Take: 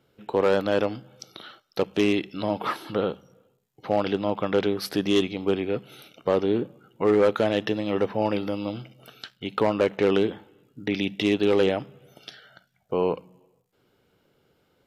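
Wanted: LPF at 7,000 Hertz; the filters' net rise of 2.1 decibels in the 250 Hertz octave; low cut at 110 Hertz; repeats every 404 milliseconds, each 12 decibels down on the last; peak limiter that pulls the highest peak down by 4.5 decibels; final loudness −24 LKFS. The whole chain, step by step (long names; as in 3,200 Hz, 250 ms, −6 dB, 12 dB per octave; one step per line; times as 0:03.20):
high-pass filter 110 Hz
low-pass filter 7,000 Hz
parametric band 250 Hz +3 dB
brickwall limiter −14 dBFS
repeating echo 404 ms, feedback 25%, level −12 dB
level +2.5 dB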